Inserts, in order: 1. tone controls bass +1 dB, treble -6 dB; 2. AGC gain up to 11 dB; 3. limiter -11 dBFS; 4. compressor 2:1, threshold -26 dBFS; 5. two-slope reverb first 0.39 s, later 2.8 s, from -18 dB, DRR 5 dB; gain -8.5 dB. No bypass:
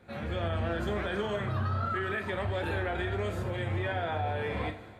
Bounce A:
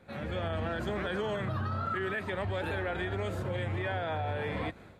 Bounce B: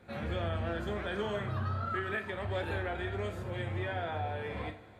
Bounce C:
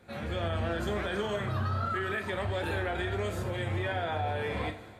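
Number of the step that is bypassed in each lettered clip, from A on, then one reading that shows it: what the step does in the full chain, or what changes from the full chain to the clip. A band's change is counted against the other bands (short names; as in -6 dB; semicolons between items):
5, loudness change -1.5 LU; 2, crest factor change +2.0 dB; 1, 4 kHz band +2.0 dB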